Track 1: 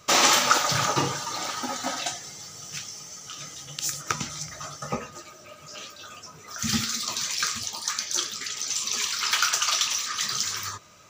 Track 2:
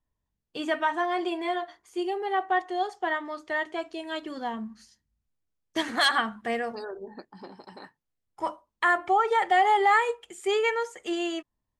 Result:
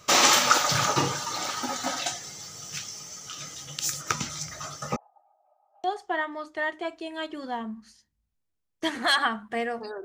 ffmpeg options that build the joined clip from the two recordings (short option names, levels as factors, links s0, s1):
-filter_complex "[0:a]asettb=1/sr,asplit=3[s0][s1][s2];[s0]atrim=end=4.964[s3];[s1]atrim=start=4.96:end=5.84,asetpts=PTS-STARTPTS,afade=t=in:d=0.004:c=qsin,afade=t=out:st=0.876:d=0.004:c=qsin,asuperpass=centerf=780:order=4:qfactor=6.4[s4];[s2]atrim=start=5.836[s5];[s3][s4]acrossfade=d=0.004:c1=hsin:c2=qsin[s6];[s6][s5]acrossfade=d=0.004:c1=qsin:c2=hsin,apad=whole_dur=10.04,atrim=end=10.04,atrim=end=5.842[s7];[1:a]atrim=start=2.768:end=6.97[s8];[s7][s8]acrossfade=d=0.004:c1=hsin:c2=hsin"